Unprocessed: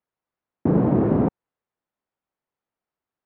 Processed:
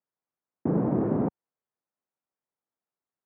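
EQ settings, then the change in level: band-pass 110–2000 Hz; -6.0 dB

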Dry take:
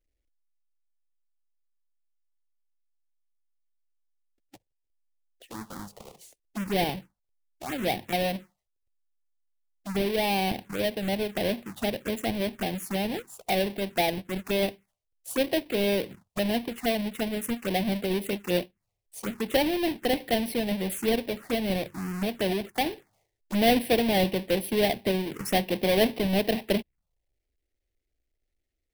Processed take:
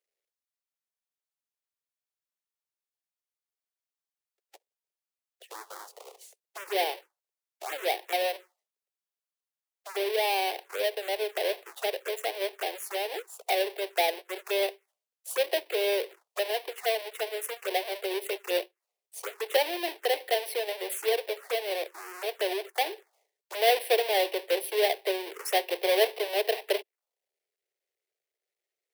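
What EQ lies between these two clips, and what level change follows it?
steep high-pass 380 Hz 72 dB/octave; 0.0 dB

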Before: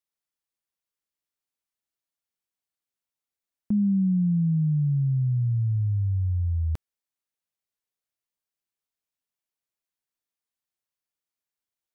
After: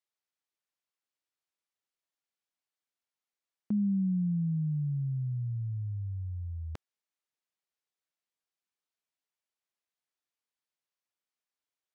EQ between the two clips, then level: high-pass 340 Hz 6 dB/octave; distance through air 53 m; 0.0 dB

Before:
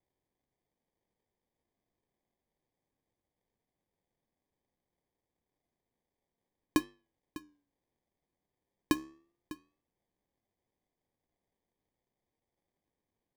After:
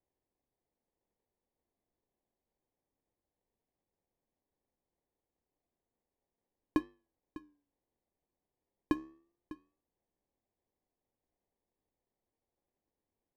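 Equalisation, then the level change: peaking EQ 140 Hz -5.5 dB 1.5 oct; treble shelf 2 kHz -12 dB; treble shelf 5 kHz -11 dB; 0.0 dB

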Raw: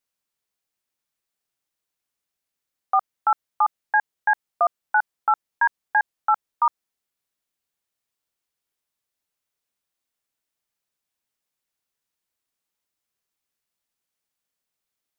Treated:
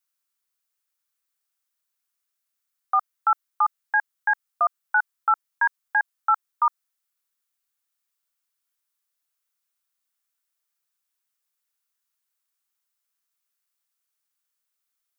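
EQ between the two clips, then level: tilt EQ +3 dB/octave; peaking EQ 1.3 kHz +7.5 dB 0.87 oct; -7.0 dB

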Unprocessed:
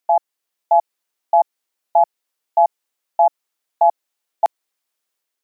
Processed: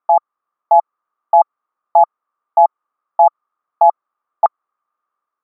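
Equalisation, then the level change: resonant low-pass 1.2 kHz, resonance Q 13; -1.0 dB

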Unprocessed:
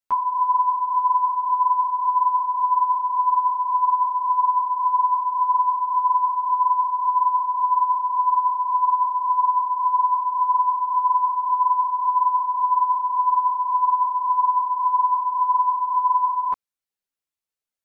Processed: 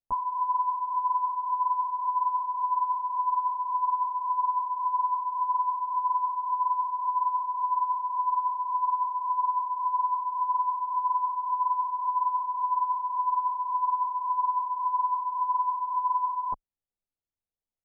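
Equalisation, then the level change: resonant low-pass 840 Hz, resonance Q 1.7; tilt EQ -4 dB/octave; -9.0 dB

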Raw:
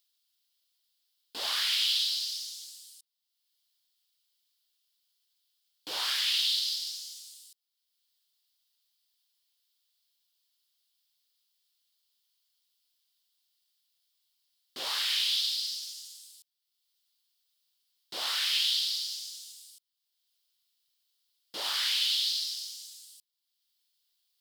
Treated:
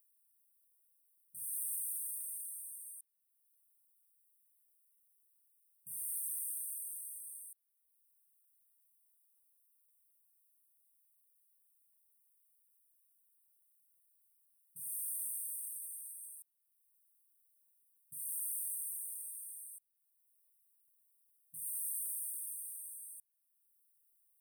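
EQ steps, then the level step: brick-wall FIR band-stop 180–8300 Hz; bass shelf 150 Hz -8.5 dB; +6.0 dB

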